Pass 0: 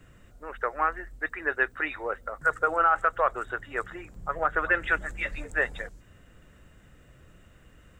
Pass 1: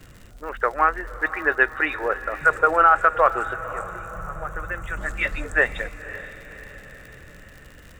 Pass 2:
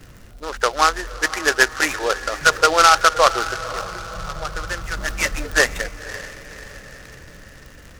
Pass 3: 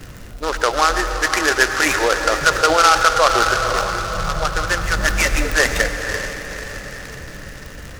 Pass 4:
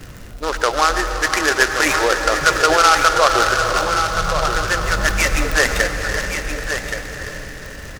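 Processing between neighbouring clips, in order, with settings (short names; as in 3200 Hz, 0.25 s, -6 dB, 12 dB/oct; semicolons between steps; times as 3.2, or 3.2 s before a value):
crackle 79/s -42 dBFS; spectral gain 3.53–4.97, 230–5600 Hz -14 dB; diffused feedback echo 0.535 s, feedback 54%, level -14.5 dB; gain +7 dB
noise-modulated delay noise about 3600 Hz, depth 0.05 ms; gain +3 dB
in parallel at 0 dB: negative-ratio compressor -22 dBFS, ratio -0.5; on the sum: reverb RT60 2.5 s, pre-delay 82 ms, DRR 8.5 dB; gain -1 dB
echo 1.124 s -8 dB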